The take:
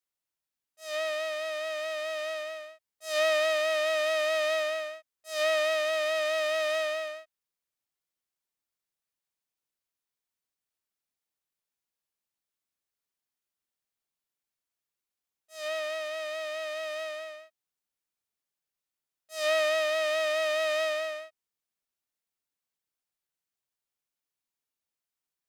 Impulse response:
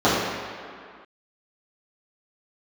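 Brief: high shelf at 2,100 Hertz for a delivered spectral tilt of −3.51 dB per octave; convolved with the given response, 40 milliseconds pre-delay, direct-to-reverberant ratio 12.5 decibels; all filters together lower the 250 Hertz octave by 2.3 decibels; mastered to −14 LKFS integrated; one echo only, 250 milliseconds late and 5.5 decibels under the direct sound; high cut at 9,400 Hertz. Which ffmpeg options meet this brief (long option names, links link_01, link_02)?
-filter_complex "[0:a]lowpass=9400,equalizer=frequency=250:width_type=o:gain=-3,highshelf=frequency=2100:gain=-7,aecho=1:1:250:0.531,asplit=2[link_01][link_02];[1:a]atrim=start_sample=2205,adelay=40[link_03];[link_02][link_03]afir=irnorm=-1:irlink=0,volume=-36dB[link_04];[link_01][link_04]amix=inputs=2:normalize=0,volume=16dB"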